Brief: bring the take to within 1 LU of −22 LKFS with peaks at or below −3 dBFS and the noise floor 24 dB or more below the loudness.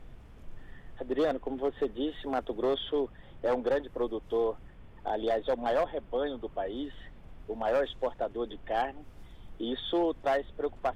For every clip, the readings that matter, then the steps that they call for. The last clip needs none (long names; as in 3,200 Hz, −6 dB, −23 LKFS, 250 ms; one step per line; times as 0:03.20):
share of clipped samples 1.4%; peaks flattened at −22.0 dBFS; background noise floor −51 dBFS; target noise floor −57 dBFS; integrated loudness −32.5 LKFS; sample peak −22.0 dBFS; target loudness −22.0 LKFS
→ clipped peaks rebuilt −22 dBFS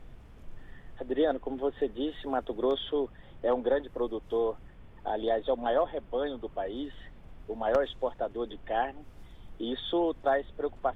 share of clipped samples 0.0%; background noise floor −51 dBFS; target noise floor −56 dBFS
→ noise reduction from a noise print 6 dB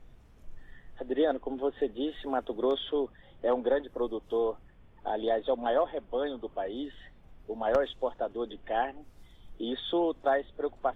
background noise floor −57 dBFS; integrated loudness −31.5 LKFS; sample peak −13.0 dBFS; target loudness −22.0 LKFS
→ level +9.5 dB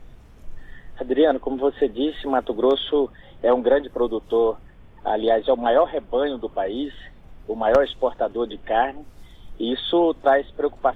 integrated loudness −22.0 LKFS; sample peak −3.5 dBFS; background noise floor −47 dBFS